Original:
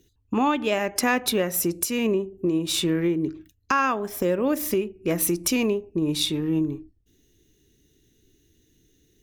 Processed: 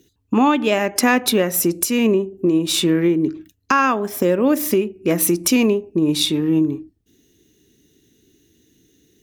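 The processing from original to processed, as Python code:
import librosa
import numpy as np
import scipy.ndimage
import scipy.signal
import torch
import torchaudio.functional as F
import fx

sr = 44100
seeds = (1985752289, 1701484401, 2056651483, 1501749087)

y = fx.highpass(x, sr, hz=140.0, slope=6)
y = fx.peak_eq(y, sr, hz=240.0, db=4.0, octaves=0.95)
y = y * 10.0 ** (5.5 / 20.0)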